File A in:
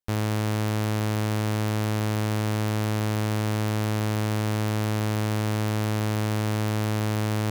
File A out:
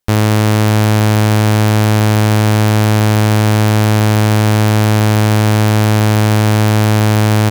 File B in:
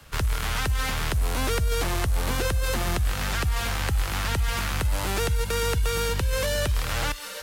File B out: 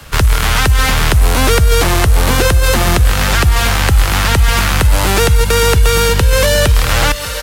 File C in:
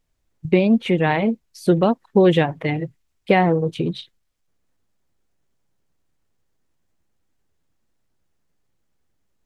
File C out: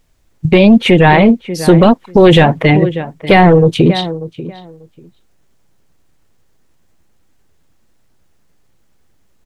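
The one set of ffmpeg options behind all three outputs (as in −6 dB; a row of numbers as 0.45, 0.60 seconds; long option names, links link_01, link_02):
-filter_complex "[0:a]asplit=2[link_01][link_02];[link_02]adelay=590,lowpass=frequency=2400:poles=1,volume=-17dB,asplit=2[link_03][link_04];[link_04]adelay=590,lowpass=frequency=2400:poles=1,volume=0.17[link_05];[link_01][link_03][link_05]amix=inputs=3:normalize=0,apsyclip=16dB,volume=-1.5dB"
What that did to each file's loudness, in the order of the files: +15.0, +14.5, +9.5 LU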